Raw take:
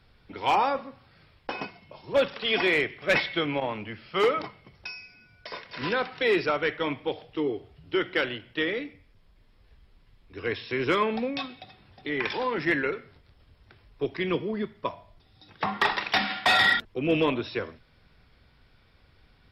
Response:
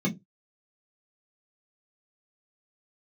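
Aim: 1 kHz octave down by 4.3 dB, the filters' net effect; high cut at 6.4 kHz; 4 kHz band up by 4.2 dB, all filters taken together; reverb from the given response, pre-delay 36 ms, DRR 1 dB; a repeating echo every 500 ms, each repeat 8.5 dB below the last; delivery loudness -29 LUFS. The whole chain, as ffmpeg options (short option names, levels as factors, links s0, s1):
-filter_complex "[0:a]lowpass=6400,equalizer=f=1000:t=o:g=-6,equalizer=f=4000:t=o:g=6,aecho=1:1:500|1000|1500|2000:0.376|0.143|0.0543|0.0206,asplit=2[s0][s1];[1:a]atrim=start_sample=2205,adelay=36[s2];[s1][s2]afir=irnorm=-1:irlink=0,volume=0.355[s3];[s0][s3]amix=inputs=2:normalize=0,volume=0.398"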